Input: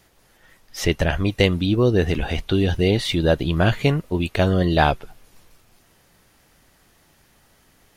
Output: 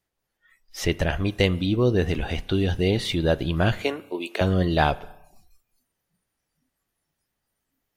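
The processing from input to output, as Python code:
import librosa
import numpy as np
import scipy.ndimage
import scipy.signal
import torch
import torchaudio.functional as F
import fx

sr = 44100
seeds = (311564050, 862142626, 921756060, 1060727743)

y = fx.highpass(x, sr, hz=310.0, slope=24, at=(3.83, 4.41))
y = fx.rev_spring(y, sr, rt60_s=1.0, pass_ms=(32,), chirp_ms=75, drr_db=18.5)
y = fx.noise_reduce_blind(y, sr, reduce_db=20)
y = y * librosa.db_to_amplitude(-3.5)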